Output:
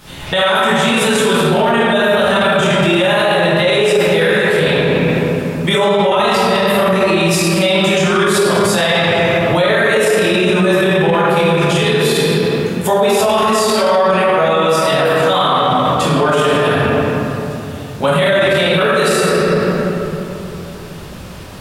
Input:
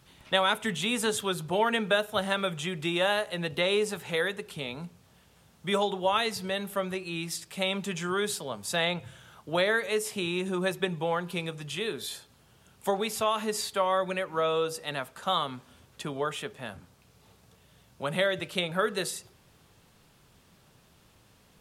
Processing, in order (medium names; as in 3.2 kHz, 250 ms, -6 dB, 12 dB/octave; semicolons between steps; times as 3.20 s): simulated room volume 120 m³, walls hard, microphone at 1.4 m; loudness maximiser +20.5 dB; trim -4 dB